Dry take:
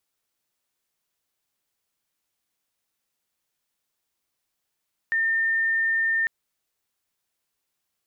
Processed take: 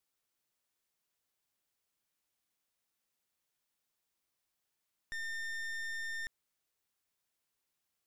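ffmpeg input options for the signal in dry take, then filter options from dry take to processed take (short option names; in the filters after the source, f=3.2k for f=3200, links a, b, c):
-f lavfi -i "sine=f=1810:d=1.15:r=44100,volume=-1.94dB"
-af "aeval=exprs='(tanh(35.5*val(0)+0.8)-tanh(0.8))/35.5':c=same,alimiter=level_in=11dB:limit=-24dB:level=0:latency=1:release=26,volume=-11dB"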